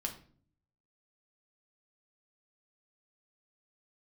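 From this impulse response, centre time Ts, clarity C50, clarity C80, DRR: 13 ms, 10.5 dB, 15.0 dB, 1.5 dB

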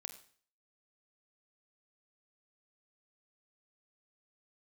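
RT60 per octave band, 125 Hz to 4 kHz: 0.50, 0.50, 0.50, 0.50, 0.50, 0.50 seconds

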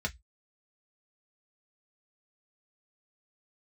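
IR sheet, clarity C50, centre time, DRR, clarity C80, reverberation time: 25.0 dB, 6 ms, 0.5 dB, 38.5 dB, 0.10 s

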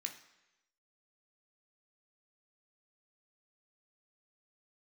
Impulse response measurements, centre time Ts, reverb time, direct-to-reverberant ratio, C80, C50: 16 ms, 1.0 s, 2.5 dB, 13.0 dB, 10.0 dB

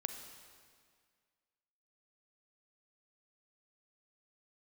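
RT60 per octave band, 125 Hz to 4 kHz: 1.9, 2.0, 1.9, 1.9, 1.9, 1.7 seconds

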